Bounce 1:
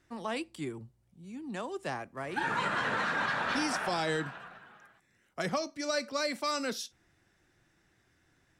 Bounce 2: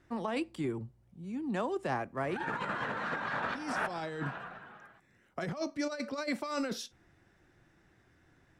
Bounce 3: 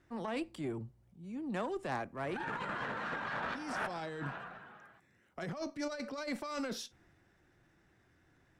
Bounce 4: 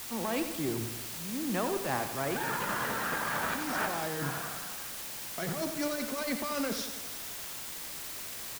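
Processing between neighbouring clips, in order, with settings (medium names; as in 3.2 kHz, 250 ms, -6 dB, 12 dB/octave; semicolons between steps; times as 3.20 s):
treble shelf 2.7 kHz -10.5 dB; compressor with a negative ratio -36 dBFS, ratio -0.5; trim +2.5 dB
transient shaper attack -4 dB, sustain +2 dB; Chebyshev shaper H 6 -20 dB, 8 -28 dB, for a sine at -20.5 dBFS; trim -3 dB
in parallel at -7 dB: word length cut 6-bit, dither triangular; on the sum: feedback delay 88 ms, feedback 57%, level -9 dB; trim +1.5 dB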